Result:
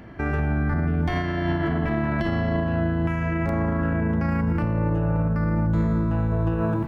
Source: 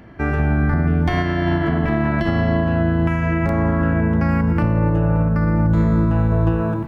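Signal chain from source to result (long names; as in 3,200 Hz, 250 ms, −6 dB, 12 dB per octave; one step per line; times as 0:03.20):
brickwall limiter −16 dBFS, peak gain reduction 7.5 dB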